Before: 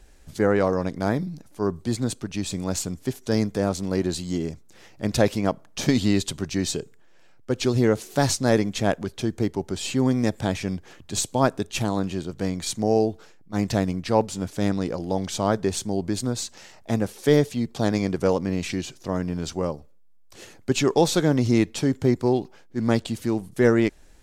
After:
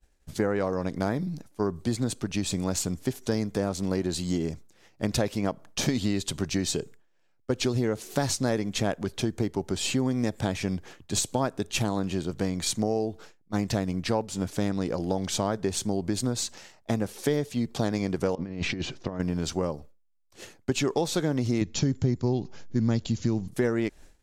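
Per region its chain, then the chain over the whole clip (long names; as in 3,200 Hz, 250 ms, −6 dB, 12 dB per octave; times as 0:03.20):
0:18.35–0:19.20: compressor whose output falls as the input rises −30 dBFS, ratio −0.5 + high-frequency loss of the air 160 metres
0:21.61–0:23.48: linear-phase brick-wall low-pass 7,400 Hz + bass and treble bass +11 dB, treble +8 dB
whole clip: downward expander −40 dBFS; downward compressor 5 to 1, threshold −25 dBFS; level +2 dB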